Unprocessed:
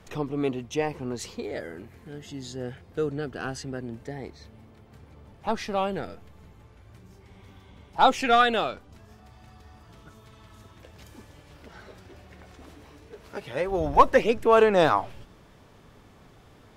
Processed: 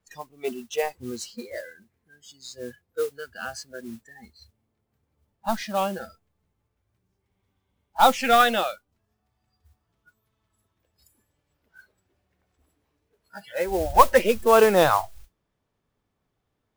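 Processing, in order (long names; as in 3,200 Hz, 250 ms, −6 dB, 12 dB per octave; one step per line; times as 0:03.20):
noise reduction from a noise print of the clip's start 26 dB
noise that follows the level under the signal 18 dB
level +2 dB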